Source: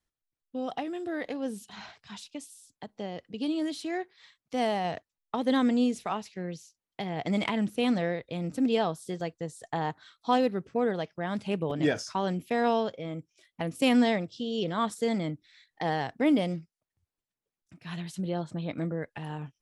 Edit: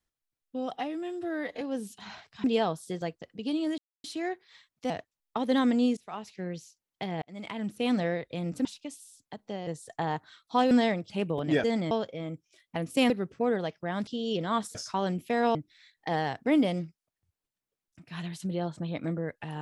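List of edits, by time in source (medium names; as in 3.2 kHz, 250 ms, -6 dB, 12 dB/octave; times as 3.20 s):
0.74–1.32 s: stretch 1.5×
2.15–3.17 s: swap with 8.63–9.41 s
3.73 s: insert silence 0.26 s
4.59–4.88 s: delete
5.95–6.38 s: fade in, from -22.5 dB
7.20–7.96 s: fade in
10.45–11.42 s: swap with 13.95–14.34 s
11.96–12.76 s: swap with 15.02–15.29 s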